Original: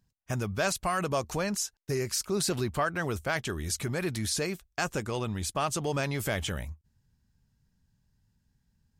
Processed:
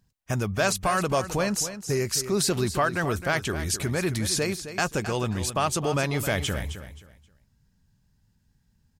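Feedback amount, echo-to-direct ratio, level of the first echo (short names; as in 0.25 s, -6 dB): 25%, -11.0 dB, -11.5 dB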